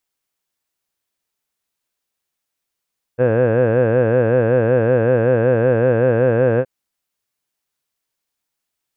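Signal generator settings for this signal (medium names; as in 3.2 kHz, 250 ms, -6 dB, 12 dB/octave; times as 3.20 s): formant vowel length 3.47 s, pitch 118 Hz, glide +0.5 st, vibrato depth 1.35 st, F1 510 Hz, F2 1.6 kHz, F3 2.6 kHz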